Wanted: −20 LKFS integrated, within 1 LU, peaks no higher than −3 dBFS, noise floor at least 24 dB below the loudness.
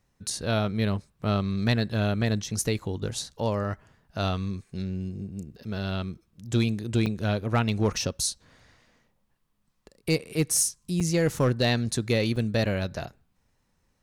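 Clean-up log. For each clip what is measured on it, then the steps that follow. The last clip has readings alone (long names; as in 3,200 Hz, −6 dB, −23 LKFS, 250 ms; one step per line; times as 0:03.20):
share of clipped samples 0.4%; peaks flattened at −15.5 dBFS; number of dropouts 3; longest dropout 4.7 ms; integrated loudness −27.5 LKFS; sample peak −15.5 dBFS; target loudness −20.0 LKFS
→ clipped peaks rebuilt −15.5 dBFS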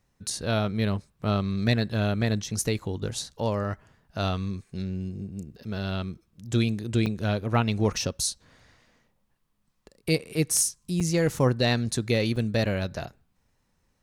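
share of clipped samples 0.0%; number of dropouts 3; longest dropout 4.7 ms
→ repair the gap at 0:07.06/0:11.00/0:12.36, 4.7 ms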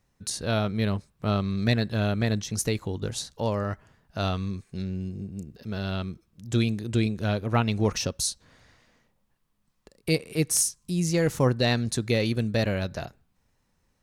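number of dropouts 0; integrated loudness −27.5 LKFS; sample peak −7.5 dBFS; target loudness −20.0 LKFS
→ level +7.5 dB
brickwall limiter −3 dBFS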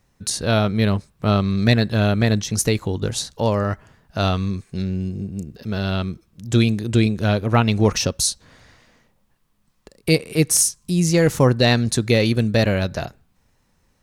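integrated loudness −20.0 LKFS; sample peak −3.0 dBFS; background noise floor −64 dBFS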